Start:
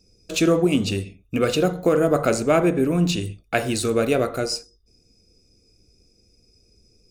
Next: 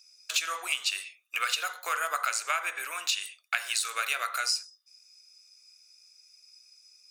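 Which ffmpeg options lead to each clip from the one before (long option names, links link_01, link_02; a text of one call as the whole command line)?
ffmpeg -i in.wav -af "highpass=frequency=1200:width=0.5412,highpass=frequency=1200:width=1.3066,acompressor=threshold=-30dB:ratio=12,volume=5.5dB" out.wav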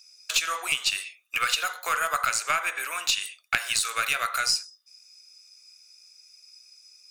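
ffmpeg -i in.wav -af "aeval=exprs='0.376*(cos(1*acos(clip(val(0)/0.376,-1,1)))-cos(1*PI/2))+0.0596*(cos(2*acos(clip(val(0)/0.376,-1,1)))-cos(2*PI/2))+0.0473*(cos(3*acos(clip(val(0)/0.376,-1,1)))-cos(3*PI/2))+0.0266*(cos(5*acos(clip(val(0)/0.376,-1,1)))-cos(5*PI/2))':channel_layout=same,volume=4.5dB" out.wav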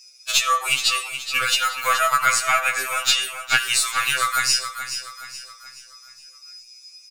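ffmpeg -i in.wav -af "aecho=1:1:424|848|1272|1696|2120:0.316|0.136|0.0585|0.0251|0.0108,afftfilt=real='re*2.45*eq(mod(b,6),0)':imag='im*2.45*eq(mod(b,6),0)':win_size=2048:overlap=0.75,volume=8dB" out.wav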